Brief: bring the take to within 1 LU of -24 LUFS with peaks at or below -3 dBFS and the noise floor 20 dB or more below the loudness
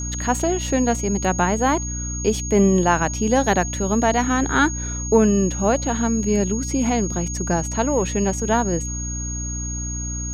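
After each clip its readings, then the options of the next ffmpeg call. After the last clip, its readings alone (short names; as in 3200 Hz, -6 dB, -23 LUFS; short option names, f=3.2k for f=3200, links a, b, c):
hum 60 Hz; harmonics up to 300 Hz; hum level -26 dBFS; steady tone 6600 Hz; tone level -29 dBFS; loudness -20.5 LUFS; peak -4.0 dBFS; loudness target -24.0 LUFS
-> -af "bandreject=f=60:t=h:w=4,bandreject=f=120:t=h:w=4,bandreject=f=180:t=h:w=4,bandreject=f=240:t=h:w=4,bandreject=f=300:t=h:w=4"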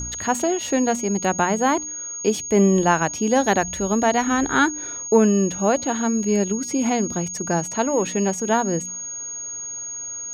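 hum none; steady tone 6600 Hz; tone level -29 dBFS
-> -af "bandreject=f=6.6k:w=30"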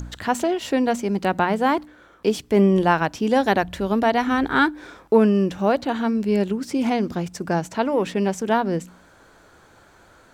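steady tone none; loudness -21.5 LUFS; peak -4.5 dBFS; loudness target -24.0 LUFS
-> -af "volume=-2.5dB"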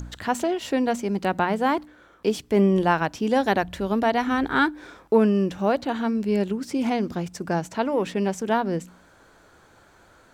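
loudness -24.0 LUFS; peak -7.0 dBFS; noise floor -55 dBFS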